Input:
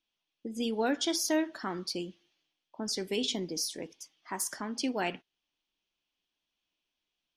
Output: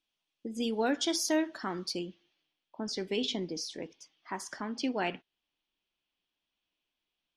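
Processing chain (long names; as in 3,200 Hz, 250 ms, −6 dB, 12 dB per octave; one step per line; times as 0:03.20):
low-pass filter 11,000 Hz 12 dB per octave, from 0:01.99 4,700 Hz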